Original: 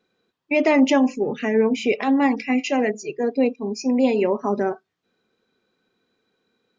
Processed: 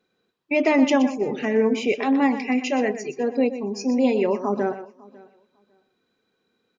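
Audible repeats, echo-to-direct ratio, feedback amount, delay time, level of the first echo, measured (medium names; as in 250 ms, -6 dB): 2, -11.0 dB, no regular repeats, 122 ms, -11.5 dB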